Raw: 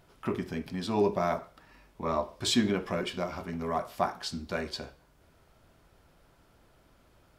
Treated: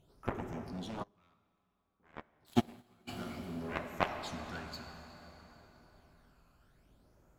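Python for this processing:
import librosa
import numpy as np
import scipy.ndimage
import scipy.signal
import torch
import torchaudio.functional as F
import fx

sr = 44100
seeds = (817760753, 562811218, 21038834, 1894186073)

y = fx.phaser_stages(x, sr, stages=12, low_hz=590.0, high_hz=4100.0, hz=0.58, feedback_pct=45)
y = 10.0 ** (-16.5 / 20.0) * np.tanh(y / 10.0 ** (-16.5 / 20.0))
y = fx.cheby_harmonics(y, sr, harmonics=(3,), levels_db=(-7,), full_scale_db=-17.0)
y = fx.rev_plate(y, sr, seeds[0], rt60_s=4.2, hf_ratio=0.8, predelay_ms=0, drr_db=5.0)
y = fx.upward_expand(y, sr, threshold_db=-43.0, expansion=2.5, at=(1.02, 3.07), fade=0.02)
y = y * librosa.db_to_amplitude(3.0)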